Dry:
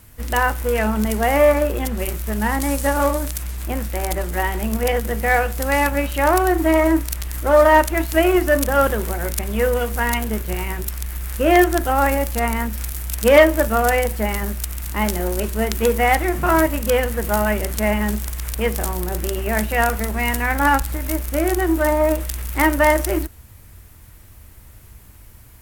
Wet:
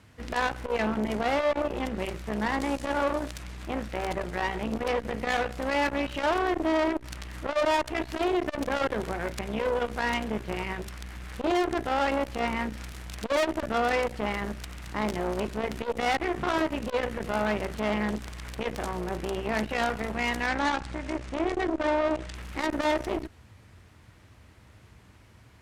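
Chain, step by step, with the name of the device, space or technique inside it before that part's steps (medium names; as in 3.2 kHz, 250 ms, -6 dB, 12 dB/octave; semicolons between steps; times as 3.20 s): valve radio (band-pass 100–4500 Hz; valve stage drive 20 dB, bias 0.65; transformer saturation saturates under 390 Hz); 20.47–22.35 s: low-pass 8.7 kHz 24 dB/octave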